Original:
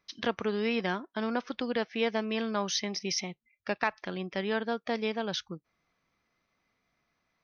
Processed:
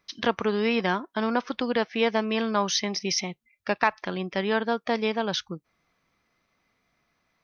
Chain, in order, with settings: dynamic bell 1 kHz, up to +4 dB, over -47 dBFS, Q 2.3; trim +5 dB

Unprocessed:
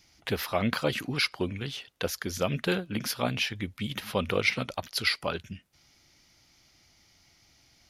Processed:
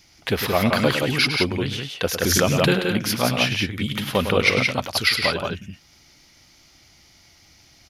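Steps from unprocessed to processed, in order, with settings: multi-tap echo 105/174 ms -9/-4 dB; 2.22–2.71 s: swell ahead of each attack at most 21 dB/s; trim +7 dB

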